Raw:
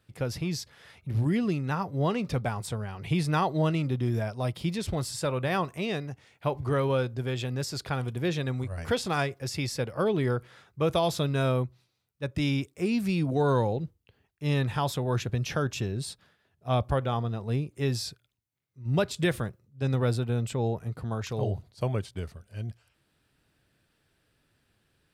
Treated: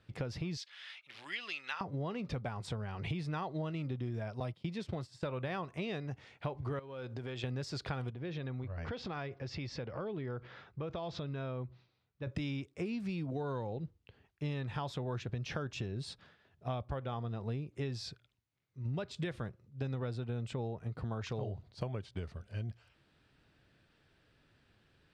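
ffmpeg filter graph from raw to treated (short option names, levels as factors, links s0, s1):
-filter_complex "[0:a]asettb=1/sr,asplit=3[s0][s1][s2];[s0]atrim=end=0.574[s3];[s1]atrim=start=0.57:end=1.81,asetpts=PTS-STARTPTS,afade=t=in:d=0.004:c=qsin,afade=t=out:st=1.236:d=0.004:c=qsin,highpass=1500,equalizer=f=3100:w=1.4:g=7[s4];[s2]atrim=start=1.806[s5];[s3][s4]acrossfade=d=0.004:c1=hsin:c2=qsin[s6];[s6][s5]acrossfade=d=0.004:c1=qsin:c2=hsin,asettb=1/sr,asplit=3[s7][s8][s9];[s7]atrim=end=4.404[s10];[s8]atrim=start=4.4:end=5.23,asetpts=PTS-STARTPTS,afade=t=in:d=0.004:c=qsin,afade=t=out:st=0.826:d=0.004:c=qsin,deesser=0.8,highpass=f=94:w=0.5412,highpass=f=94:w=1.3066,agate=range=0.0224:threshold=0.0224:ratio=3:release=100:detection=peak[s11];[s9]atrim=start=5.226[s12];[s10][s11]acrossfade=d=0.004:c1=hsin:c2=qsin[s13];[s13][s12]acrossfade=d=0.004:c1=qsin:c2=hsin,asettb=1/sr,asplit=3[s14][s15][s16];[s14]atrim=end=6.794[s17];[s15]atrim=start=6.79:end=7.44,asetpts=PTS-STARTPTS,afade=t=in:d=0.004:c=qsin,afade=t=out:st=0.646:d=0.004:c=qsin,lowshelf=f=150:g=-8.5,acompressor=threshold=0.0112:ratio=6:attack=3.2:release=140:knee=1:detection=peak[s18];[s16]atrim=start=7.436[s19];[s17][s18]acrossfade=d=0.004:c1=hsin:c2=qsin[s20];[s20][s19]acrossfade=d=0.004:c1=qsin:c2=hsin,asettb=1/sr,asplit=3[s21][s22][s23];[s21]atrim=end=8.104[s24];[s22]atrim=start=8.1:end=12.27,asetpts=PTS-STARTPTS,afade=t=in:d=0.004:c=qsin,afade=t=out:st=4.166:d=0.004:c=qsin,lowpass=f=6000:w=0.5412,lowpass=f=6000:w=1.3066,highshelf=f=4200:g=-7,acompressor=threshold=0.01:ratio=4:attack=3.2:release=140:knee=1:detection=peak[s25];[s23]atrim=start=12.266[s26];[s24][s25]acrossfade=d=0.004:c1=hsin:c2=qsin[s27];[s27][s26]acrossfade=d=0.004:c1=qsin:c2=hsin,acompressor=threshold=0.0141:ratio=10,lowpass=4800,volume=1.26"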